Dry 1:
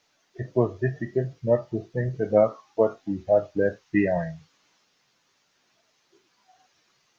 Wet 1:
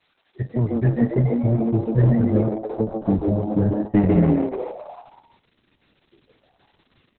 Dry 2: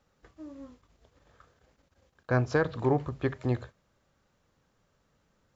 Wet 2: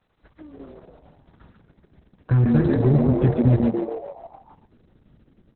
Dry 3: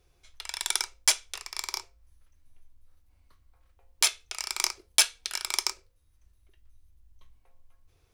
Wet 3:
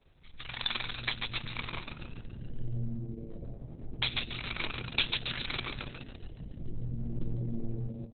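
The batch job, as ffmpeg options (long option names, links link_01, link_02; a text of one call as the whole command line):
ffmpeg -i in.wav -filter_complex "[0:a]asubboost=boost=7.5:cutoff=240,acrossover=split=320|3500[link_01][link_02][link_03];[link_01]asoftclip=type=hard:threshold=-15.5dB[link_04];[link_02]acompressor=threshold=-33dB:ratio=8[link_05];[link_04][link_05][link_03]amix=inputs=3:normalize=0,asplit=8[link_06][link_07][link_08][link_09][link_10][link_11][link_12][link_13];[link_07]adelay=141,afreqshift=110,volume=-4dB[link_14];[link_08]adelay=282,afreqshift=220,volume=-9.2dB[link_15];[link_09]adelay=423,afreqshift=330,volume=-14.4dB[link_16];[link_10]adelay=564,afreqshift=440,volume=-19.6dB[link_17];[link_11]adelay=705,afreqshift=550,volume=-24.8dB[link_18];[link_12]adelay=846,afreqshift=660,volume=-30dB[link_19];[link_13]adelay=987,afreqshift=770,volume=-35.2dB[link_20];[link_06][link_14][link_15][link_16][link_17][link_18][link_19][link_20]amix=inputs=8:normalize=0,volume=2.5dB" -ar 48000 -c:a libopus -b:a 6k out.opus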